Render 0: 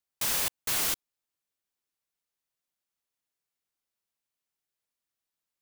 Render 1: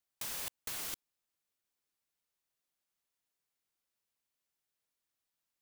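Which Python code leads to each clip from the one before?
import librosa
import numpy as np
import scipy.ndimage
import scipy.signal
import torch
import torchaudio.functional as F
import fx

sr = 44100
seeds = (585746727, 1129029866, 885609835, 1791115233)

y = fx.over_compress(x, sr, threshold_db=-34.0, ratio=-1.0)
y = y * 10.0 ** (-6.0 / 20.0)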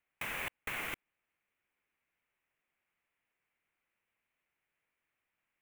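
y = fx.high_shelf_res(x, sr, hz=3300.0, db=-12.5, q=3.0)
y = y * 10.0 ** (5.5 / 20.0)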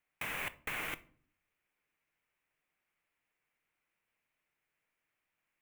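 y = fx.room_shoebox(x, sr, seeds[0], volume_m3=510.0, walls='furnished', distance_m=0.48)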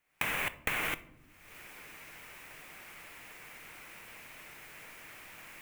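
y = fx.recorder_agc(x, sr, target_db=-29.0, rise_db_per_s=48.0, max_gain_db=30)
y = y * 10.0 ** (5.0 / 20.0)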